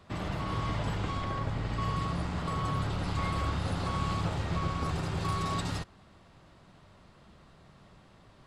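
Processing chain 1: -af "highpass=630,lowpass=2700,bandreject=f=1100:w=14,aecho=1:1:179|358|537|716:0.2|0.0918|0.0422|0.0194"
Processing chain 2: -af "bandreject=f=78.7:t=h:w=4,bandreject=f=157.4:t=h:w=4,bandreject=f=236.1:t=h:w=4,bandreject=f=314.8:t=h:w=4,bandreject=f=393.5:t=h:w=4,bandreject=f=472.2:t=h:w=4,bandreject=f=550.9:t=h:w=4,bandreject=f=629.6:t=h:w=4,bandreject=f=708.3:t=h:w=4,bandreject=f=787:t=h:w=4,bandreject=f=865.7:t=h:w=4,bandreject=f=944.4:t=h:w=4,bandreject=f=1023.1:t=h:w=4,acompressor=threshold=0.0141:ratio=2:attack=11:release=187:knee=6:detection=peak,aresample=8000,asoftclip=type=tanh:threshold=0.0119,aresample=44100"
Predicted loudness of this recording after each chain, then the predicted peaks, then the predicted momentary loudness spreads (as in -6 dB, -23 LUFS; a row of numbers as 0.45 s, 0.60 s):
-41.5 LUFS, -43.0 LUFS; -27.5 dBFS, -36.5 dBFS; 3 LU, 16 LU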